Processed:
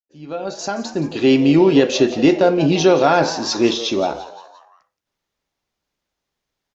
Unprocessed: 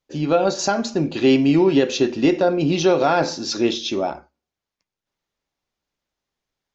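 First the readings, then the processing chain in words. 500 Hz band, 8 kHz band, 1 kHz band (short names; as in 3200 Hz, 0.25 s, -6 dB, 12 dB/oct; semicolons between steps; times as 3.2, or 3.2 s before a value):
+2.5 dB, n/a, +2.5 dB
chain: opening faded in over 1.61 s; added harmonics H 3 -42 dB, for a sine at -5 dBFS; frequency-shifting echo 0.173 s, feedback 48%, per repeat +110 Hz, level -15 dB; gain +3.5 dB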